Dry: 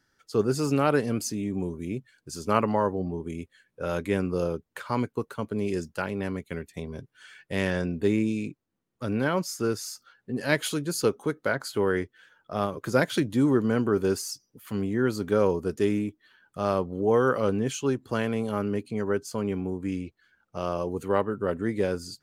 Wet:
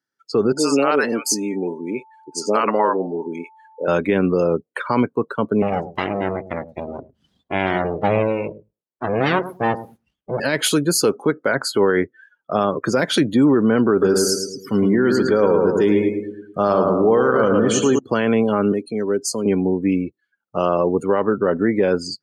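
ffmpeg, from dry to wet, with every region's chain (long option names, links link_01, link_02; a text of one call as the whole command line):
ffmpeg -i in.wav -filter_complex "[0:a]asettb=1/sr,asplit=3[link_01][link_02][link_03];[link_01]atrim=end=0.524[link_04];[link_02]atrim=start=0.52:end=3.88,asetpts=PTS-STARTPTS,afade=type=in:duration=0.004:curve=qsin,afade=type=out:start_time=3.356:duration=0.004:curve=qsin,highpass=340,aeval=exprs='val(0)+0.00141*sin(2*PI*880*n/s)':channel_layout=same,acrossover=split=630[link_05][link_06];[link_06]adelay=50[link_07];[link_05][link_07]amix=inputs=2:normalize=0,atrim=end_sample=148176[link_08];[link_03]atrim=start=3.876[link_09];[link_04][link_08]acrossfade=duration=0.004:curve1=hsin:curve2=qsin[link_10];[link_10][link_09]acrossfade=duration=0.004:curve1=qsin:curve2=hsin,asettb=1/sr,asplit=3[link_11][link_12][link_13];[link_11]atrim=end=5.624[link_14];[link_12]atrim=start=5.62:end=10.4,asetpts=PTS-STARTPTS,afade=type=in:duration=0.004:curve=qsin,afade=type=out:start_time=4.776:duration=0.004:curve=qsin,aemphasis=mode=reproduction:type=75kf,aeval=exprs='abs(val(0))':channel_layout=same,asplit=2[link_15][link_16];[link_16]adelay=104,lowpass=frequency=910:poles=1,volume=-11.5dB,asplit=2[link_17][link_18];[link_18]adelay=104,lowpass=frequency=910:poles=1,volume=0.26,asplit=2[link_19][link_20];[link_20]adelay=104,lowpass=frequency=910:poles=1,volume=0.26[link_21];[link_15][link_17][link_19][link_21]amix=inputs=4:normalize=0,atrim=end_sample=210798[link_22];[link_13]atrim=start=10.396[link_23];[link_14][link_22]acrossfade=duration=0.004:curve1=hsin:curve2=qsin[link_24];[link_24][link_23]acrossfade=duration=0.004:curve1=qsin:curve2=hsin,asettb=1/sr,asplit=3[link_25][link_26][link_27];[link_25]atrim=end=13.914[link_28];[link_26]atrim=start=13.91:end=17.99,asetpts=PTS-STARTPTS,afade=type=in:duration=0.004:curve=qsin,afade=type=out:start_time=4.076:duration=0.004:curve=qsin,bandreject=frequency=2600:width=12,aecho=1:1:108|216|324|432|540|648|756:0.531|0.276|0.144|0.0746|0.0388|0.0202|0.0105,atrim=end_sample=179928[link_29];[link_27]atrim=start=17.986[link_30];[link_28][link_29]acrossfade=duration=0.004:curve1=hsin:curve2=qsin[link_31];[link_31][link_30]acrossfade=duration=0.004:curve1=qsin:curve2=hsin,asettb=1/sr,asplit=3[link_32][link_33][link_34];[link_32]atrim=end=18.724[link_35];[link_33]atrim=start=18.72:end=19.46,asetpts=PTS-STARTPTS,afade=type=in:duration=0.004:curve=qsin,afade=type=out:start_time=0.736:duration=0.004:curve=qsin,bass=frequency=250:gain=-9,treble=frequency=4000:gain=5,acrossover=split=390|3000[link_36][link_37][link_38];[link_37]acompressor=threshold=-43dB:ratio=4:attack=3.2:release=140:knee=2.83:detection=peak[link_39];[link_36][link_39][link_38]amix=inputs=3:normalize=0[link_40];[link_34]atrim=start=19.456[link_41];[link_35][link_40]acrossfade=duration=0.004:curve1=hsin:curve2=qsin[link_42];[link_42][link_41]acrossfade=duration=0.004:curve1=qsin:curve2=hsin,afftdn=noise_reduction=27:noise_floor=-44,highpass=170,alimiter=level_in=19.5dB:limit=-1dB:release=50:level=0:latency=1,volume=-6.5dB" out.wav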